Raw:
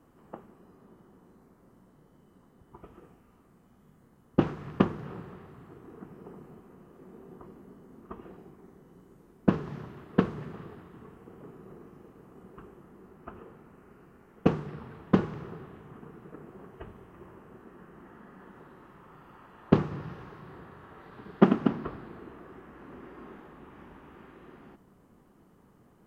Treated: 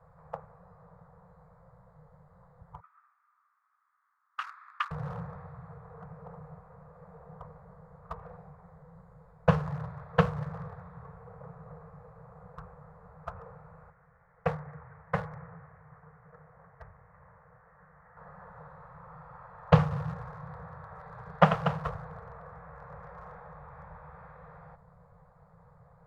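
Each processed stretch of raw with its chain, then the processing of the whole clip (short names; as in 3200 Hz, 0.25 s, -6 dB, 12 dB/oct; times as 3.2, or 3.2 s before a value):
2.8–4.91 elliptic high-pass 1200 Hz, stop band 60 dB + high shelf 3000 Hz -8.5 dB + mismatched tape noise reduction decoder only
13.9–18.17 ladder low-pass 2300 Hz, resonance 55% + dynamic EQ 640 Hz, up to +4 dB, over -53 dBFS, Q 1.3
whole clip: Wiener smoothing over 15 samples; Chebyshev band-stop 170–480 Hz, order 4; gain +7 dB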